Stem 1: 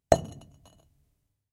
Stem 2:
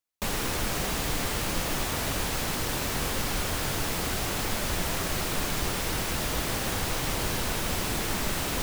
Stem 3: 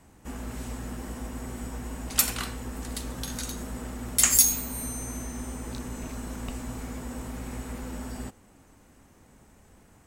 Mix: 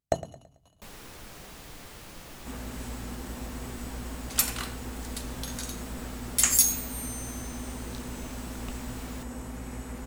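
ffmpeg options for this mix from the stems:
ffmpeg -i stem1.wav -i stem2.wav -i stem3.wav -filter_complex "[0:a]volume=-6.5dB,asplit=2[link_01][link_02];[link_02]volume=-16dB[link_03];[1:a]adelay=600,volume=-16.5dB[link_04];[2:a]adelay=2200,volume=-2dB[link_05];[link_03]aecho=0:1:110|220|330|440|550:1|0.39|0.152|0.0593|0.0231[link_06];[link_01][link_04][link_05][link_06]amix=inputs=4:normalize=0" out.wav

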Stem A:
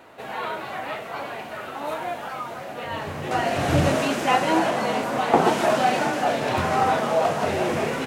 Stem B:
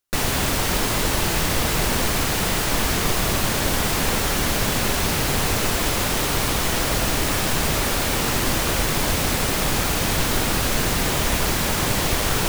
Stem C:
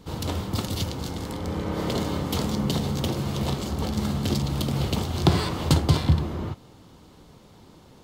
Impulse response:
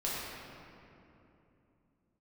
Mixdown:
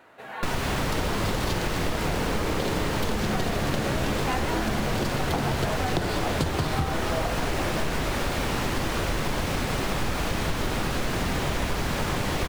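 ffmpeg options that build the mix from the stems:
-filter_complex "[0:a]equalizer=frequency=1600:width_type=o:width=0.77:gain=5,volume=-7dB[link_01];[1:a]lowpass=frequency=2800:poles=1,adelay=300,volume=-3dB,asplit=2[link_02][link_03];[link_03]volume=-15dB[link_04];[2:a]equalizer=frequency=460:width=1.5:gain=6,adelay=700,volume=-1dB[link_05];[3:a]atrim=start_sample=2205[link_06];[link_04][link_06]afir=irnorm=-1:irlink=0[link_07];[link_01][link_02][link_05][link_07]amix=inputs=4:normalize=0,acompressor=threshold=-22dB:ratio=6"

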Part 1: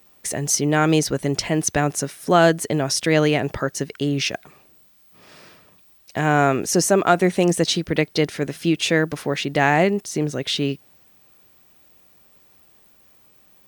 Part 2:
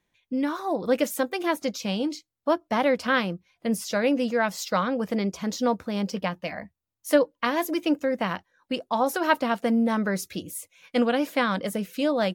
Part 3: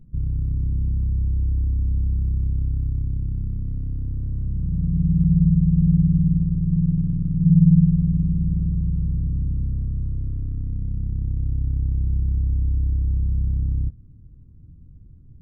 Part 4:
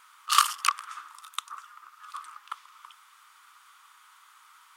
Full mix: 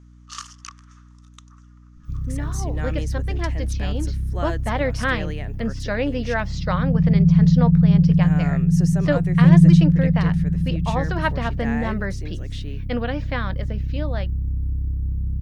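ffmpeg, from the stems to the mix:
ffmpeg -i stem1.wav -i stem2.wav -i stem3.wav -i stem4.wav -filter_complex "[0:a]adelay=2050,volume=-16.5dB[link_01];[1:a]lowpass=frequency=5200:width=0.5412,lowpass=frequency=5200:width=1.3066,dynaudnorm=framelen=850:gausssize=5:maxgain=8dB,adelay=1950,volume=-7.5dB[link_02];[2:a]adynamicequalizer=threshold=0.0316:dfrequency=170:dqfactor=1.9:tfrequency=170:tqfactor=1.9:attack=5:release=100:ratio=0.375:range=3.5:mode=boostabove:tftype=bell,adelay=1950,volume=-3.5dB[link_03];[3:a]lowpass=frequency=6200:width_type=q:width=4.8,volume=-17.5dB[link_04];[link_01][link_02][link_03][link_04]amix=inputs=4:normalize=0,equalizer=frequency=1800:width=5.5:gain=6,aeval=exprs='val(0)+0.00501*(sin(2*PI*60*n/s)+sin(2*PI*2*60*n/s)/2+sin(2*PI*3*60*n/s)/3+sin(2*PI*4*60*n/s)/4+sin(2*PI*5*60*n/s)/5)':channel_layout=same" out.wav

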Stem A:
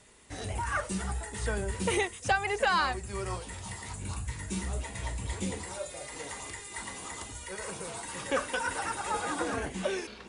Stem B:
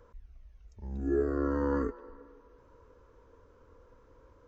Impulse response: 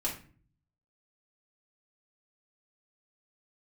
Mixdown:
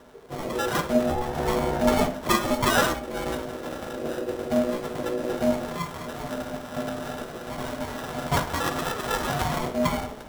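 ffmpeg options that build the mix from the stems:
-filter_complex "[0:a]acrusher=samples=20:mix=1:aa=0.000001,volume=3dB,asplit=2[link_01][link_02];[link_02]volume=-4.5dB[link_03];[1:a]volume=1.5dB[link_04];[2:a]atrim=start_sample=2205[link_05];[link_03][link_05]afir=irnorm=-1:irlink=0[link_06];[link_01][link_04][link_06]amix=inputs=3:normalize=0,equalizer=frequency=180:width_type=o:width=0.27:gain=11.5,aeval=exprs='val(0)*sin(2*PI*430*n/s)':channel_layout=same"

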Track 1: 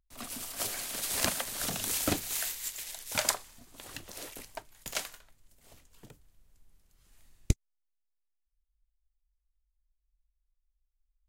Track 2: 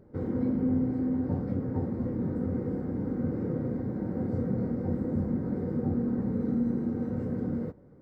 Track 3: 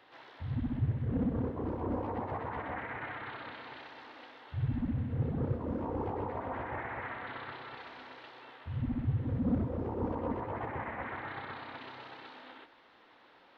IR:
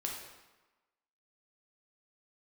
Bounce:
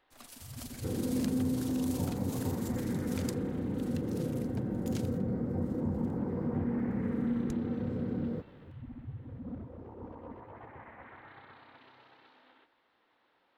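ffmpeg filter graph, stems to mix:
-filter_complex "[0:a]tremolo=f=24:d=0.519,equalizer=frequency=4400:width=1.5:gain=2,acompressor=threshold=-39dB:ratio=2,volume=-8dB[link_01];[1:a]acompressor=threshold=-39dB:ratio=1.5,adelay=700,volume=1.5dB[link_02];[2:a]volume=-11.5dB[link_03];[link_01][link_02][link_03]amix=inputs=3:normalize=0"

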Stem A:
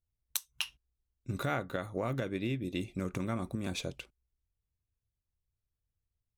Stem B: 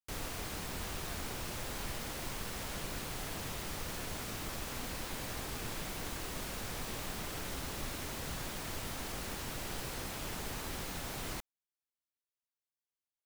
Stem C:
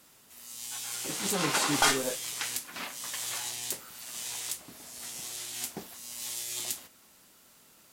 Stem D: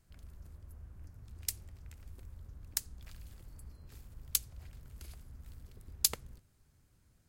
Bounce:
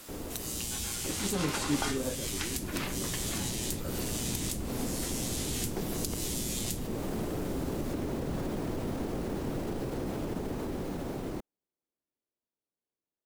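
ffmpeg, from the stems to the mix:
ffmpeg -i stem1.wav -i stem2.wav -i stem3.wav -i stem4.wav -filter_complex "[0:a]bass=frequency=250:gain=-12,treble=frequency=4000:gain=4,volume=-7dB[link_01];[1:a]alimiter=level_in=12dB:limit=-24dB:level=0:latency=1,volume=-12dB,dynaudnorm=framelen=320:gausssize=17:maxgain=8dB,tiltshelf=frequency=970:gain=5,volume=-3.5dB[link_02];[2:a]tiltshelf=frequency=710:gain=-7,volume=3dB[link_03];[3:a]volume=0.5dB[link_04];[link_01][link_02][link_03][link_04]amix=inputs=4:normalize=0,equalizer=frequency=340:width=0.55:gain=12.5,acrossover=split=230[link_05][link_06];[link_06]acompressor=threshold=-34dB:ratio=5[link_07];[link_05][link_07]amix=inputs=2:normalize=0" out.wav

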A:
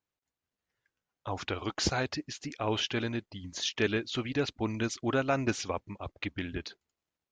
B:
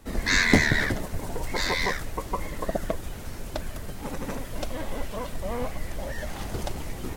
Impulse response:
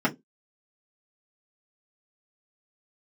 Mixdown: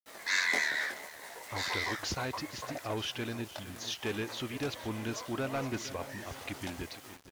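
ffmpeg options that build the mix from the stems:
-filter_complex "[0:a]asoftclip=type=tanh:threshold=-24.5dB,adelay=250,volume=-3.5dB,asplit=2[link_01][link_02];[link_02]volume=-14dB[link_03];[1:a]flanger=delay=17.5:depth=6.6:speed=0.73,highpass=730,volume=-4dB,asplit=2[link_04][link_05];[link_05]volume=-19.5dB[link_06];[link_03][link_06]amix=inputs=2:normalize=0,aecho=0:1:464|928|1392|1856|2320|2784|3248|3712:1|0.52|0.27|0.141|0.0731|0.038|0.0198|0.0103[link_07];[link_01][link_04][link_07]amix=inputs=3:normalize=0,aeval=exprs='val(0)*gte(abs(val(0)),0.00316)':channel_layout=same"

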